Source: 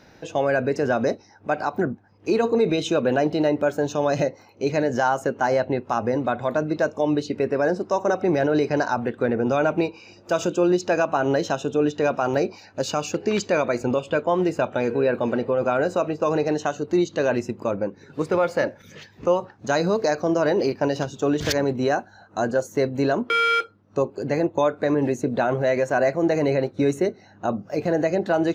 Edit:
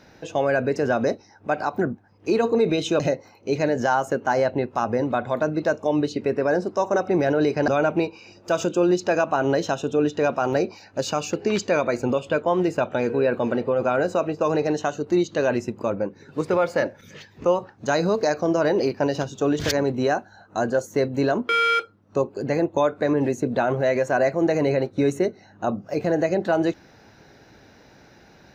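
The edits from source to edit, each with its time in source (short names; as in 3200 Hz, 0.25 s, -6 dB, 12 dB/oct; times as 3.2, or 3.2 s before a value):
3–4.14 cut
8.82–9.49 cut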